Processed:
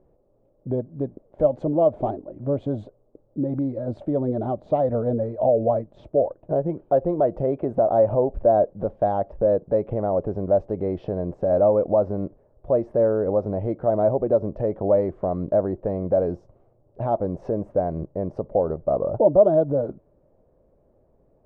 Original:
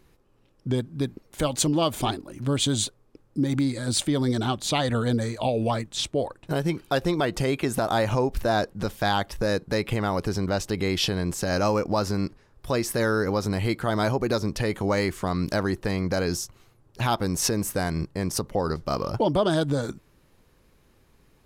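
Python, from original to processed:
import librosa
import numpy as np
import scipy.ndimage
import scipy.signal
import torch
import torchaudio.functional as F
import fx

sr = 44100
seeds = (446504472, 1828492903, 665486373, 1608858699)

y = fx.lowpass_res(x, sr, hz=610.0, q=4.9)
y = y * 10.0 ** (-3.0 / 20.0)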